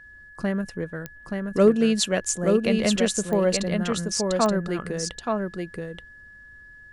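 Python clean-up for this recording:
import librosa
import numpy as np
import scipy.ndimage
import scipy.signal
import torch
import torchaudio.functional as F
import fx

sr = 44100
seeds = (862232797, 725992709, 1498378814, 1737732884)

y = fx.fix_declip(x, sr, threshold_db=-8.0)
y = fx.fix_declick_ar(y, sr, threshold=10.0)
y = fx.notch(y, sr, hz=1700.0, q=30.0)
y = fx.fix_echo_inverse(y, sr, delay_ms=877, level_db=-4.0)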